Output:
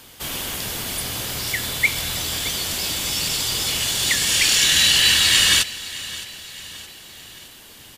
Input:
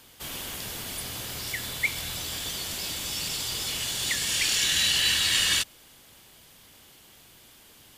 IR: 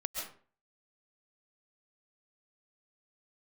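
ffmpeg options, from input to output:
-af "aecho=1:1:616|1232|1848|2464:0.141|0.072|0.0367|0.0187,volume=8dB"

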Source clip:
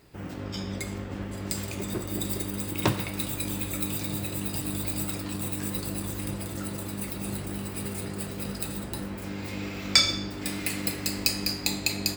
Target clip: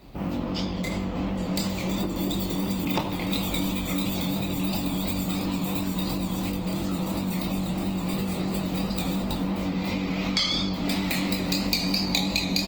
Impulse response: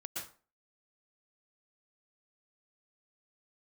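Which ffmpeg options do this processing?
-filter_complex "[0:a]highshelf=f=3.4k:g=-10.5,asplit=2[a][b];[1:a]atrim=start_sample=2205,highshelf=f=10k:g=4.5,adelay=25[c];[b][c]afir=irnorm=-1:irlink=0,volume=-18.5dB[d];[a][d]amix=inputs=2:normalize=0,asetrate=42336,aresample=44100,asplit=2[e][f];[f]adelay=74,lowpass=f=1.5k:p=1,volume=-8.5dB,asplit=2[g][h];[h]adelay=74,lowpass=f=1.5k:p=1,volume=0.51,asplit=2[i][j];[j]adelay=74,lowpass=f=1.5k:p=1,volume=0.51,asplit=2[k][l];[l]adelay=74,lowpass=f=1.5k:p=1,volume=0.51,asplit=2[m][n];[n]adelay=74,lowpass=f=1.5k:p=1,volume=0.51,asplit=2[o][p];[p]adelay=74,lowpass=f=1.5k:p=1,volume=0.51[q];[e][g][i][k][m][o][q]amix=inputs=7:normalize=0,flanger=delay=20:depth=7.8:speed=2.9,asplit=2[r][s];[s]adelay=18,volume=-13dB[t];[r][t]amix=inputs=2:normalize=0,acompressor=threshold=-35dB:ratio=16,equalizer=f=100:t=o:w=0.67:g=-12,equalizer=f=400:t=o:w=0.67:g=-10,equalizer=f=1.6k:t=o:w=0.67:g=-12,equalizer=f=4k:t=o:w=0.67:g=3,equalizer=f=10k:t=o:w=0.67:g=-10,acrossover=split=240|3000[u][v][w];[u]acompressor=threshold=-47dB:ratio=6[x];[x][v][w]amix=inputs=3:normalize=0,alimiter=level_in=24.5dB:limit=-1dB:release=50:level=0:latency=1,volume=-6.5dB" -ar 48000 -c:a libopus -b:a 24k

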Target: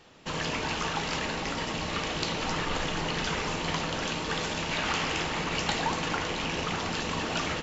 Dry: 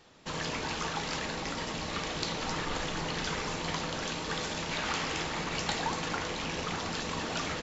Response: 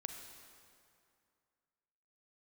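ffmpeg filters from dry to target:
-filter_complex "[0:a]asplit=2[a][b];[b]equalizer=f=2.9k:w=2.3:g=12[c];[1:a]atrim=start_sample=2205,highshelf=f=2.5k:g=-9.5[d];[c][d]afir=irnorm=-1:irlink=0,volume=-2.5dB[e];[a][e]amix=inputs=2:normalize=0"

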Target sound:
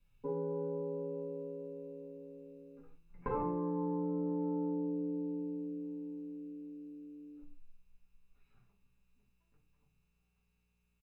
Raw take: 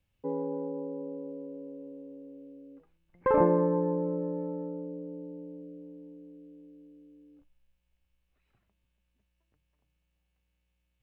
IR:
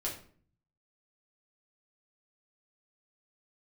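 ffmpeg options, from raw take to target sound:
-filter_complex "[0:a]aecho=1:1:0.8:0.48,acompressor=threshold=-33dB:ratio=10[a];[1:a]atrim=start_sample=2205,afade=t=out:st=0.28:d=0.01,atrim=end_sample=12789,asetrate=57330,aresample=44100[b];[a][b]afir=irnorm=-1:irlink=0"

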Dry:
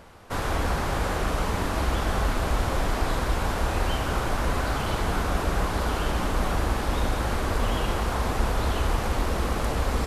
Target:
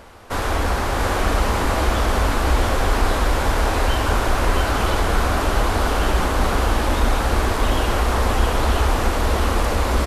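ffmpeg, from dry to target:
-filter_complex "[0:a]equalizer=f=150:w=3.3:g=-12,asplit=2[a][b];[b]asoftclip=type=tanh:threshold=-20.5dB,volume=-7.5dB[c];[a][c]amix=inputs=2:normalize=0,aecho=1:1:667:0.668,volume=3dB"

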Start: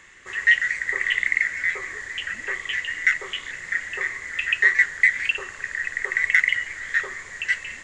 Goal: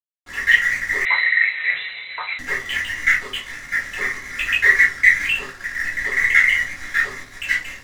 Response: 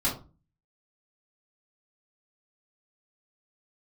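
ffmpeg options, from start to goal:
-filter_complex "[0:a]aeval=exprs='sgn(val(0))*max(abs(val(0))-0.0133,0)':c=same[a];[1:a]atrim=start_sample=2205[b];[a][b]afir=irnorm=-1:irlink=0,asettb=1/sr,asplit=3[c][d][e];[c]atrim=end=1.054[f];[d]atrim=start=1.05:end=2.39,asetpts=PTS-STARTPTS,afade=t=in:d=0.004:c=qsin,afade=t=out:st=1.336:d=0.004:c=qsin,lowpass=f=3.4k:t=q:w=0.5098,lowpass=f=3.4k:t=q:w=0.6013,lowpass=f=3.4k:t=q:w=0.9,lowpass=f=3.4k:t=q:w=2.563,afreqshift=-4000[g];[e]atrim=start=2.386[h];[f][g]acrossfade=d=0.004:c1=hsin:c2=qsin[i];[i][h]acrossfade=d=0.004:c1=qsin:c2=hsin,volume=-2dB"

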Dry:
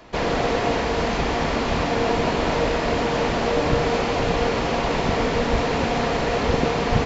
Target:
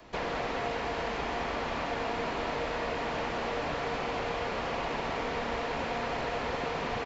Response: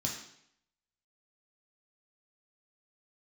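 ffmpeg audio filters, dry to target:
-filter_complex "[0:a]asplit=2[a][b];[b]aecho=0:1:212:0.501[c];[a][c]amix=inputs=2:normalize=0,acrossover=split=270|690|1400|3500[d][e][f][g][h];[d]acompressor=threshold=-37dB:ratio=4[i];[e]acompressor=threshold=-33dB:ratio=4[j];[f]acompressor=threshold=-30dB:ratio=4[k];[g]acompressor=threshold=-34dB:ratio=4[l];[h]acompressor=threshold=-48dB:ratio=4[m];[i][j][k][l][m]amix=inputs=5:normalize=0,volume=-6dB"

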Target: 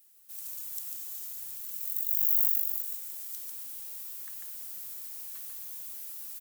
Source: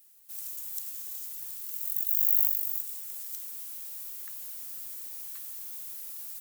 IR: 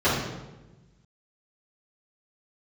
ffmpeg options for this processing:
-filter_complex "[0:a]aecho=1:1:145:0.631,asplit=2[a][b];[1:a]atrim=start_sample=2205,asetrate=66150,aresample=44100[c];[b][c]afir=irnorm=-1:irlink=0,volume=-26dB[d];[a][d]amix=inputs=2:normalize=0,volume=-2.5dB"

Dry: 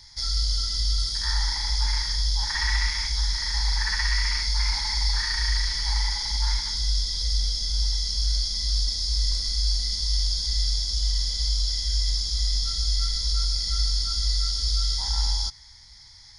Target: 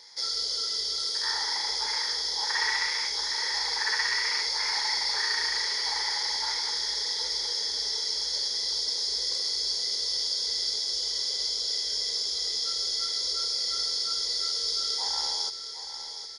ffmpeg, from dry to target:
-filter_complex "[0:a]highpass=f=440:t=q:w=4.9,highshelf=f=8.1k:g=-4.5,asplit=2[a][b];[b]aecho=0:1:763|1526|2289|3052|3815|4578|5341:0.299|0.176|0.104|0.0613|0.0362|0.0213|0.0126[c];[a][c]amix=inputs=2:normalize=0"

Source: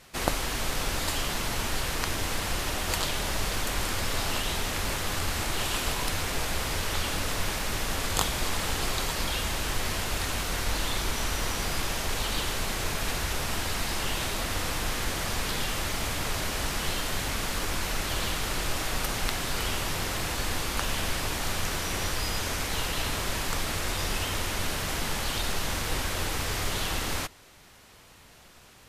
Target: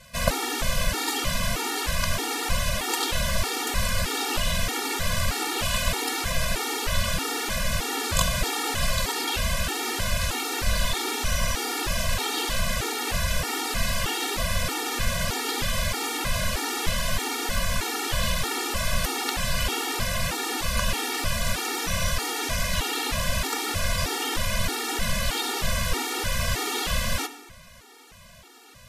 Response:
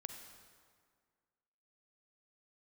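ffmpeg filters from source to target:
-filter_complex "[0:a]asplit=2[a][b];[1:a]atrim=start_sample=2205,asetrate=61740,aresample=44100[c];[b][c]afir=irnorm=-1:irlink=0,volume=5.5dB[d];[a][d]amix=inputs=2:normalize=0,afftfilt=real='re*gt(sin(2*PI*1.6*pts/sr)*(1-2*mod(floor(b*sr/1024/240),2)),0)':imag='im*gt(sin(2*PI*1.6*pts/sr)*(1-2*mod(floor(b*sr/1024/240),2)),0)':win_size=1024:overlap=0.75,volume=1.5dB"

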